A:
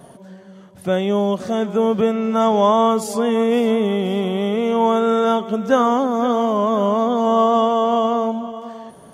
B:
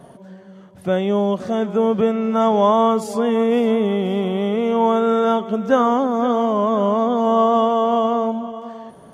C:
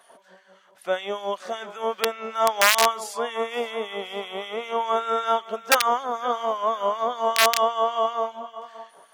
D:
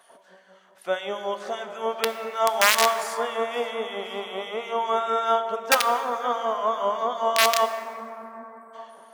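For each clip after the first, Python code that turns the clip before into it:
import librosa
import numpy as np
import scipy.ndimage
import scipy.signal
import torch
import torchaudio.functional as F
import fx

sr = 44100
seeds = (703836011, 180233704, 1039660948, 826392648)

y1 = fx.high_shelf(x, sr, hz=4000.0, db=-7.5)
y2 = (np.mod(10.0 ** (7.0 / 20.0) * y1 + 1.0, 2.0) - 1.0) / 10.0 ** (7.0 / 20.0)
y2 = fx.filter_lfo_highpass(y2, sr, shape='sine', hz=5.2, low_hz=630.0, high_hz=1900.0, q=0.8)
y3 = fx.spec_erase(y2, sr, start_s=7.66, length_s=1.08, low_hz=420.0, high_hz=7700.0)
y3 = fx.rev_plate(y3, sr, seeds[0], rt60_s=4.0, hf_ratio=0.3, predelay_ms=0, drr_db=8.5)
y3 = y3 * 10.0 ** (-1.0 / 20.0)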